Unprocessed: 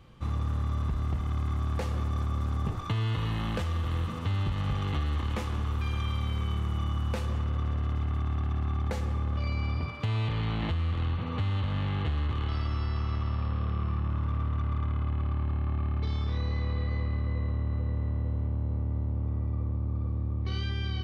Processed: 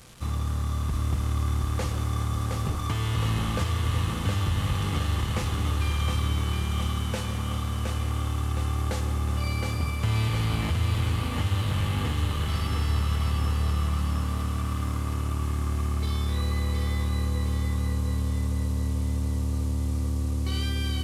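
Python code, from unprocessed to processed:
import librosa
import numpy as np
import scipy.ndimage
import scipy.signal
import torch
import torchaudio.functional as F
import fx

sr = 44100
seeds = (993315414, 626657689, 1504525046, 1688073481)

y = fx.delta_mod(x, sr, bps=64000, step_db=-48.5)
y = fx.high_shelf(y, sr, hz=3800.0, db=10.5)
y = fx.echo_feedback(y, sr, ms=716, feedback_pct=55, wet_db=-4)
y = y * librosa.db_to_amplitude(1.5)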